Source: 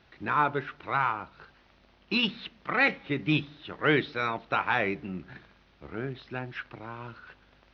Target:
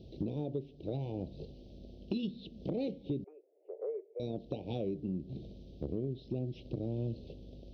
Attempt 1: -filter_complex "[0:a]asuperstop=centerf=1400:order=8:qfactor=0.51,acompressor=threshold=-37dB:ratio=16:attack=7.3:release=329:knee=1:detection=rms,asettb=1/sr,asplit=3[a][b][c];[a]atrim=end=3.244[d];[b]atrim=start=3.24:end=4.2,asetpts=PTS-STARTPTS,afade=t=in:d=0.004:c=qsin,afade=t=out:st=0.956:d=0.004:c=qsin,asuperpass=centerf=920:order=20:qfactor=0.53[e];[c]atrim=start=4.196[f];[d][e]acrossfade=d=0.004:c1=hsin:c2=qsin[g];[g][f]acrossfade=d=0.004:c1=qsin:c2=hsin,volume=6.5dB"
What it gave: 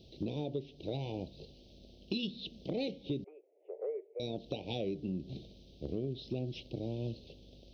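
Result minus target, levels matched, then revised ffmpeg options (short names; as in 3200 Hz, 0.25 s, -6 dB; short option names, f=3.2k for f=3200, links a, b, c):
1000 Hz band +2.5 dB
-filter_complex "[0:a]asuperstop=centerf=1400:order=8:qfactor=0.51,tiltshelf=f=1.1k:g=7,acompressor=threshold=-37dB:ratio=16:attack=7.3:release=329:knee=1:detection=rms,asettb=1/sr,asplit=3[a][b][c];[a]atrim=end=3.244[d];[b]atrim=start=3.24:end=4.2,asetpts=PTS-STARTPTS,afade=t=in:d=0.004:c=qsin,afade=t=out:st=0.956:d=0.004:c=qsin,asuperpass=centerf=920:order=20:qfactor=0.53[e];[c]atrim=start=4.196[f];[d][e]acrossfade=d=0.004:c1=hsin:c2=qsin[g];[g][f]acrossfade=d=0.004:c1=qsin:c2=hsin,volume=6.5dB"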